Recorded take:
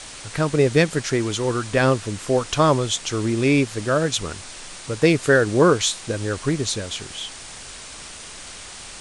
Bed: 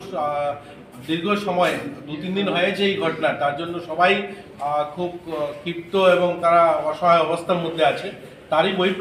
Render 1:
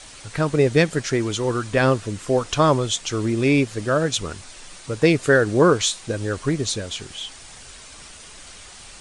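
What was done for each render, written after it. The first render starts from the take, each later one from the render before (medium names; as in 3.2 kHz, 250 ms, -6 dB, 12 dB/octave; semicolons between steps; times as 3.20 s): noise reduction 6 dB, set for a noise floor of -38 dBFS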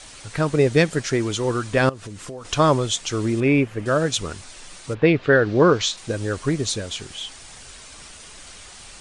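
1.89–2.45 s: compression 8:1, threshold -31 dBFS; 3.40–3.86 s: high-order bell 6 kHz -13.5 dB; 4.93–5.96 s: low-pass 2.9 kHz -> 6.7 kHz 24 dB/octave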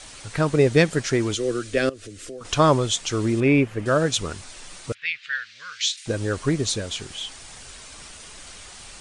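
1.34–2.41 s: static phaser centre 380 Hz, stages 4; 4.92–6.06 s: inverse Chebyshev high-pass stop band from 930 Hz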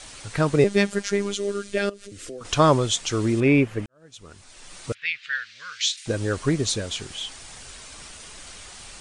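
0.64–2.12 s: robot voice 201 Hz; 3.86–4.84 s: fade in quadratic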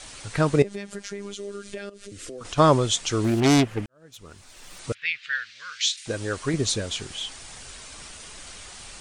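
0.62–2.58 s: compression 4:1, threshold -32 dBFS; 3.24–4.79 s: self-modulated delay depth 0.48 ms; 5.50–6.54 s: bass shelf 450 Hz -6.5 dB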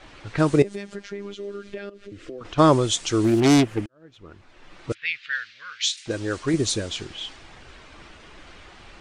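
level-controlled noise filter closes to 2 kHz, open at -20.5 dBFS; peaking EQ 330 Hz +7 dB 0.33 oct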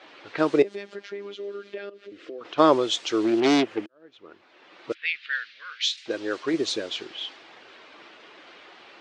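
Chebyshev band-pass 370–4100 Hz, order 2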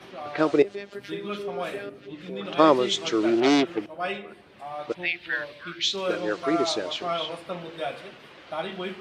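add bed -13.5 dB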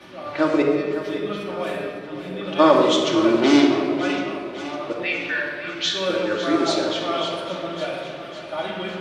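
on a send: thinning echo 554 ms, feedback 60%, high-pass 210 Hz, level -12 dB; on the sum: simulated room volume 2400 m³, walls mixed, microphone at 2.5 m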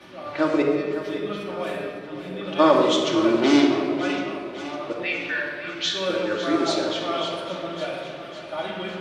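trim -2 dB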